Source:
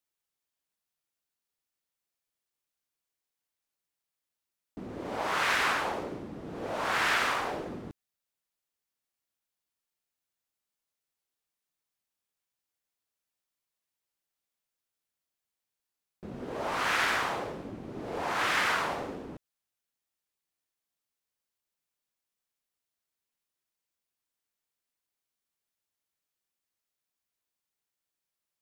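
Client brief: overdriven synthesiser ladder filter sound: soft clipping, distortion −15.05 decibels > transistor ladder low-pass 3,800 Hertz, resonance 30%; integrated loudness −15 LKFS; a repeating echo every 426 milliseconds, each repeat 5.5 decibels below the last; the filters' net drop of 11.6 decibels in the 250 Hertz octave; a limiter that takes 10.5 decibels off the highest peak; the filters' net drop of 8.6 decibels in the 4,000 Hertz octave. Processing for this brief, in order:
parametric band 250 Hz −6.5 dB
parametric band 4,000 Hz −3.5 dB
brickwall limiter −25.5 dBFS
repeating echo 426 ms, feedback 53%, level −5.5 dB
soft clipping −30.5 dBFS
transistor ladder low-pass 3,800 Hz, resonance 30%
level +28.5 dB

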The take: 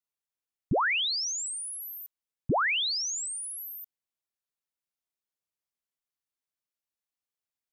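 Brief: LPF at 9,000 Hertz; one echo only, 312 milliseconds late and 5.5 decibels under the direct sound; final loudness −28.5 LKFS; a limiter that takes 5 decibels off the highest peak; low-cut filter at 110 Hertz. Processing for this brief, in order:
high-pass filter 110 Hz
low-pass filter 9,000 Hz
brickwall limiter −26 dBFS
single-tap delay 312 ms −5.5 dB
level +0.5 dB

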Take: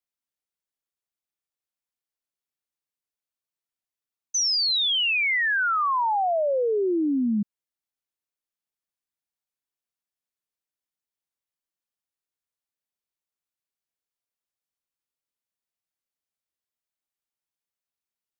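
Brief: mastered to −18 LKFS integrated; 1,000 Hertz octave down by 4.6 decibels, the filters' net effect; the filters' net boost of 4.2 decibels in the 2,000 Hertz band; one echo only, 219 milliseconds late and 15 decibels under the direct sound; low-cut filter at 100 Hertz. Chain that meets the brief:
high-pass filter 100 Hz
parametric band 1,000 Hz −8.5 dB
parametric band 2,000 Hz +7.5 dB
single-tap delay 219 ms −15 dB
level +2.5 dB

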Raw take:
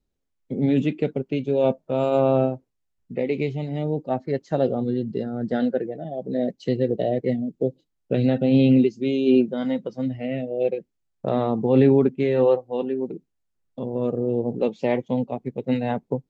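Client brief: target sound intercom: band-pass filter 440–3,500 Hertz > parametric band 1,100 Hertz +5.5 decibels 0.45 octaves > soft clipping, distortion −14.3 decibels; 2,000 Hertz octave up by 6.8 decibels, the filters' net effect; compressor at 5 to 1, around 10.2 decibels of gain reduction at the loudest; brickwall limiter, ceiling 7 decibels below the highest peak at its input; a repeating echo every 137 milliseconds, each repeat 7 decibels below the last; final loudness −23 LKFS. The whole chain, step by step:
parametric band 2,000 Hz +8.5 dB
downward compressor 5 to 1, threshold −24 dBFS
brickwall limiter −19.5 dBFS
band-pass filter 440–3,500 Hz
parametric band 1,100 Hz +5.5 dB 0.45 octaves
repeating echo 137 ms, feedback 45%, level −7 dB
soft clipping −27.5 dBFS
level +13 dB

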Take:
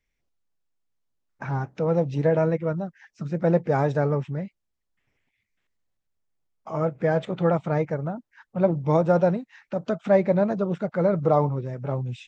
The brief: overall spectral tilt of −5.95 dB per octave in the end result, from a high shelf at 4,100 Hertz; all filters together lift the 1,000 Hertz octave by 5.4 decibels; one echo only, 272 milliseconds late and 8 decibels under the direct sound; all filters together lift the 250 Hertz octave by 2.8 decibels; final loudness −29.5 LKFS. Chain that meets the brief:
parametric band 250 Hz +4.5 dB
parametric band 1,000 Hz +7.5 dB
high-shelf EQ 4,100 Hz −6 dB
single-tap delay 272 ms −8 dB
level −8.5 dB

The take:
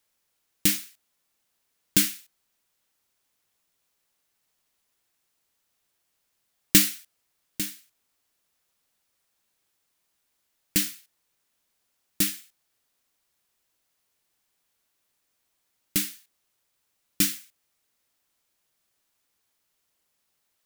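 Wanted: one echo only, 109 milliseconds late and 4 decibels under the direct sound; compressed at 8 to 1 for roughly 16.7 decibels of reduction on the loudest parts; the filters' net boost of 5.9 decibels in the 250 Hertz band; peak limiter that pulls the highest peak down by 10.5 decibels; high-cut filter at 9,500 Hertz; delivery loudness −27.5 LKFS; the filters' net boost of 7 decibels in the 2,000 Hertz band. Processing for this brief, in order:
low-pass filter 9,500 Hz
parametric band 250 Hz +8 dB
parametric band 2,000 Hz +8.5 dB
downward compressor 8 to 1, threshold −28 dBFS
brickwall limiter −19 dBFS
single-tap delay 109 ms −4 dB
level +12.5 dB

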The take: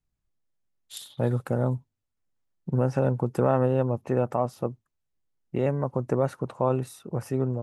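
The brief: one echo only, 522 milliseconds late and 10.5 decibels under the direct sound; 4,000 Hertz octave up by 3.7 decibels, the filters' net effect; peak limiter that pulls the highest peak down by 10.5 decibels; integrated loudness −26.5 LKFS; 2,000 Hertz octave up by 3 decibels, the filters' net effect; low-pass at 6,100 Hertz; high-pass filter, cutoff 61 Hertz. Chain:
high-pass filter 61 Hz
low-pass filter 6,100 Hz
parametric band 2,000 Hz +3.5 dB
parametric band 4,000 Hz +4 dB
brickwall limiter −18.5 dBFS
single-tap delay 522 ms −10.5 dB
level +5 dB

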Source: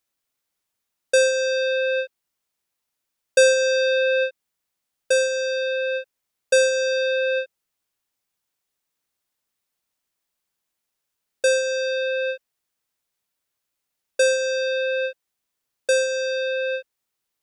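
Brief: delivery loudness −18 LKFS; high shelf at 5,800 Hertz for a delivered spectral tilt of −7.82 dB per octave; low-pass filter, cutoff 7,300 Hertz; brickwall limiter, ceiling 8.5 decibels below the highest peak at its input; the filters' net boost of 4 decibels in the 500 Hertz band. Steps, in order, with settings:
low-pass filter 7,300 Hz
parametric band 500 Hz +4 dB
high-shelf EQ 5,800 Hz +6.5 dB
level +2 dB
brickwall limiter −11.5 dBFS

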